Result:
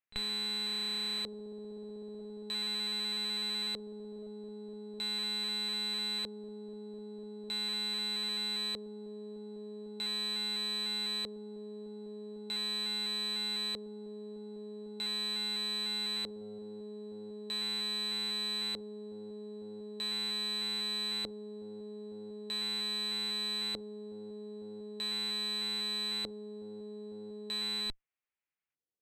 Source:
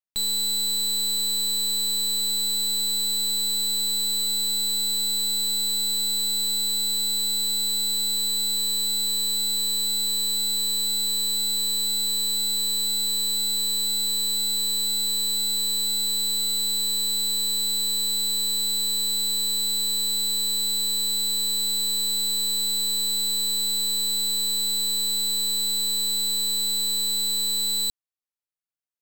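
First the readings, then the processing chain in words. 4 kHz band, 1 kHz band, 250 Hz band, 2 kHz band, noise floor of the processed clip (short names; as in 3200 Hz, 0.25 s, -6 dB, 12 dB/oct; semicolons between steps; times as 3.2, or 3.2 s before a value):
-12.0 dB, -1.5 dB, -1.5 dB, +2.5 dB, -45 dBFS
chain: pre-echo 36 ms -21 dB; LFO low-pass square 0.4 Hz 450–2300 Hz; added harmonics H 6 -28 dB, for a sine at -20.5 dBFS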